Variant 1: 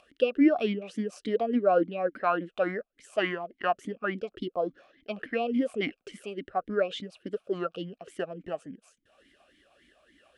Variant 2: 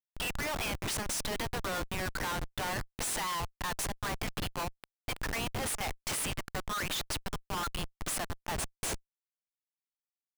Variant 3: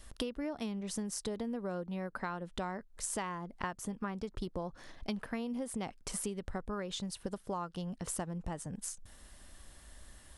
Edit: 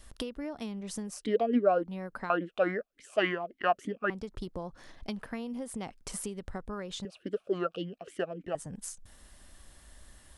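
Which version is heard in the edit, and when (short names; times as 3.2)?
3
1.18–1.77 from 1, crossfade 0.24 s
2.3–4.1 from 1
7.05–8.55 from 1
not used: 2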